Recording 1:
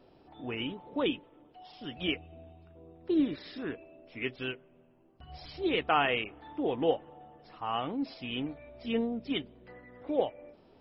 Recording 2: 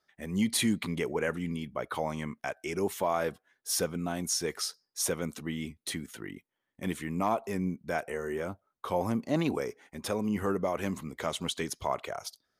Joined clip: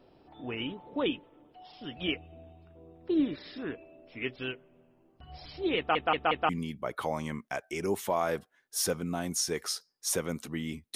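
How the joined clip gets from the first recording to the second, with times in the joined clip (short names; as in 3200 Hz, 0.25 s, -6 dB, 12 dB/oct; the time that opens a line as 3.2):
recording 1
5.77 stutter in place 0.18 s, 4 plays
6.49 switch to recording 2 from 1.42 s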